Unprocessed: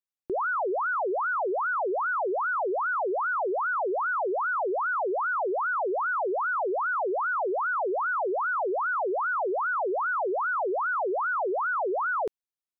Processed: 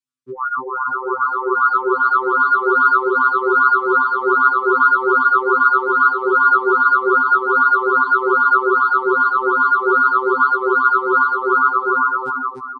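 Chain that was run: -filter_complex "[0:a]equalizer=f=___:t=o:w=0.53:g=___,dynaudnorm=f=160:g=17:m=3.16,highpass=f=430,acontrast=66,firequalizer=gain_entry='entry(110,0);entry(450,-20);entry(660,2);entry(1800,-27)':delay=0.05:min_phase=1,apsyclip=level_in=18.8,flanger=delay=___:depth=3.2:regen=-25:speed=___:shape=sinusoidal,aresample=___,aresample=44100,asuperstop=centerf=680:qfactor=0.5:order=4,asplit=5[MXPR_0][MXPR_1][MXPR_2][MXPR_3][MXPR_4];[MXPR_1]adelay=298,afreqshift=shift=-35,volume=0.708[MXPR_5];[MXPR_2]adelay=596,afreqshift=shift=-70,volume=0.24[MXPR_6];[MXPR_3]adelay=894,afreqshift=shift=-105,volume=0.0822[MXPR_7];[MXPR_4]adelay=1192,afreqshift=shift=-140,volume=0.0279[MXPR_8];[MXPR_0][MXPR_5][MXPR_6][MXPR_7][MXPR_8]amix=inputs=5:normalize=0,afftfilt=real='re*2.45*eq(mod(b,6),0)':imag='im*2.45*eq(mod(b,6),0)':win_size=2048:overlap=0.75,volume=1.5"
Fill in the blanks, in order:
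810, -6.5, 7.3, 0.97, 22050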